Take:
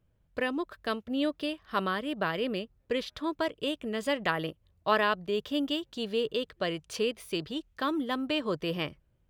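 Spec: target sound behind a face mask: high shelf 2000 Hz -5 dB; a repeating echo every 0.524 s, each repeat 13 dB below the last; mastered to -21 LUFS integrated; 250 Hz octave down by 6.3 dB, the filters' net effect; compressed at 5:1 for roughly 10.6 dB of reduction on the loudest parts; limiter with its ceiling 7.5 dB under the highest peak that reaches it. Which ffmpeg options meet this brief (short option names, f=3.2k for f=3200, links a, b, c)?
-af "equalizer=f=250:t=o:g=-8,acompressor=threshold=-33dB:ratio=5,alimiter=level_in=3.5dB:limit=-24dB:level=0:latency=1,volume=-3.5dB,highshelf=f=2k:g=-5,aecho=1:1:524|1048|1572:0.224|0.0493|0.0108,volume=20dB"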